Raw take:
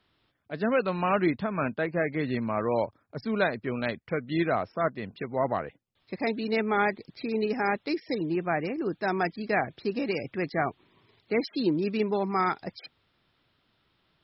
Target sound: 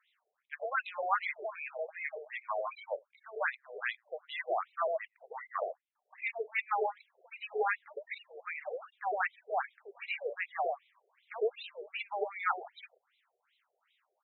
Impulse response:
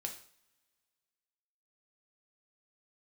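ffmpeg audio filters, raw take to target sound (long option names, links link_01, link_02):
-filter_complex "[0:a]acrossover=split=200|640[link_01][link_02][link_03];[link_02]adelay=100[link_04];[link_01]adelay=190[link_05];[link_05][link_04][link_03]amix=inputs=3:normalize=0,afftfilt=real='re*between(b*sr/1024,540*pow(2900/540,0.5+0.5*sin(2*PI*2.6*pts/sr))/1.41,540*pow(2900/540,0.5+0.5*sin(2*PI*2.6*pts/sr))*1.41)':imag='im*between(b*sr/1024,540*pow(2900/540,0.5+0.5*sin(2*PI*2.6*pts/sr))/1.41,540*pow(2900/540,0.5+0.5*sin(2*PI*2.6*pts/sr))*1.41)':win_size=1024:overlap=0.75,volume=1.5dB"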